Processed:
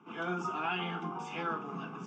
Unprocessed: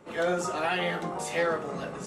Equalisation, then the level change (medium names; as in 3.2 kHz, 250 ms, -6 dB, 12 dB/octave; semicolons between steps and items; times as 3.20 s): high-pass 160 Hz 24 dB/octave; distance through air 220 m; static phaser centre 2.8 kHz, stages 8; 0.0 dB